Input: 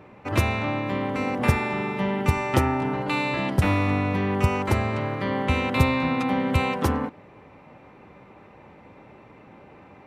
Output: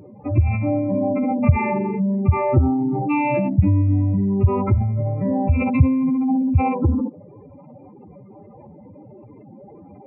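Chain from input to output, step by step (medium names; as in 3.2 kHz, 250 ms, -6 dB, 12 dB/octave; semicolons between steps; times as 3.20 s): spectral contrast enhancement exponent 3.6; on a send: ladder band-pass 650 Hz, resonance 55% + reverberation RT60 0.60 s, pre-delay 3 ms, DRR 17 dB; on the sum: trim +6 dB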